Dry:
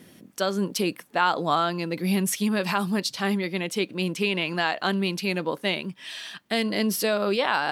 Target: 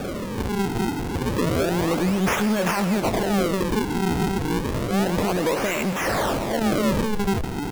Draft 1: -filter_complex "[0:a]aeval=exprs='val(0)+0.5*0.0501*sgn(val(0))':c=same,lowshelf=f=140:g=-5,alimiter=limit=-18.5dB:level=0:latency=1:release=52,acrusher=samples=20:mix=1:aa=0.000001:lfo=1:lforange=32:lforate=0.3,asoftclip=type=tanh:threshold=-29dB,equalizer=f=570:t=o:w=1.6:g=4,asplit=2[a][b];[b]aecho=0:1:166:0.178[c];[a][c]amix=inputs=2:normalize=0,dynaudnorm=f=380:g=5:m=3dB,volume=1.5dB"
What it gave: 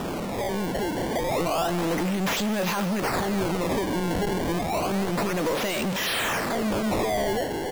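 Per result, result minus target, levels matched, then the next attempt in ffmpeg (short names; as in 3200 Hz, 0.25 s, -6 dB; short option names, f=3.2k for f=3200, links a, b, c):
soft clip: distortion +11 dB; decimation with a swept rate: distortion -5 dB
-filter_complex "[0:a]aeval=exprs='val(0)+0.5*0.0501*sgn(val(0))':c=same,lowshelf=f=140:g=-5,alimiter=limit=-18.5dB:level=0:latency=1:release=52,acrusher=samples=20:mix=1:aa=0.000001:lfo=1:lforange=32:lforate=0.3,asoftclip=type=tanh:threshold=-19.5dB,equalizer=f=570:t=o:w=1.6:g=4,asplit=2[a][b];[b]aecho=0:1:166:0.178[c];[a][c]amix=inputs=2:normalize=0,dynaudnorm=f=380:g=5:m=3dB,volume=1.5dB"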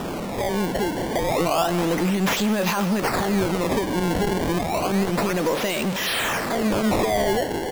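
decimation with a swept rate: distortion -5 dB
-filter_complex "[0:a]aeval=exprs='val(0)+0.5*0.0501*sgn(val(0))':c=same,lowshelf=f=140:g=-5,alimiter=limit=-18.5dB:level=0:latency=1:release=52,acrusher=samples=43:mix=1:aa=0.000001:lfo=1:lforange=68.8:lforate=0.3,asoftclip=type=tanh:threshold=-19.5dB,equalizer=f=570:t=o:w=1.6:g=4,asplit=2[a][b];[b]aecho=0:1:166:0.178[c];[a][c]amix=inputs=2:normalize=0,dynaudnorm=f=380:g=5:m=3dB,volume=1.5dB"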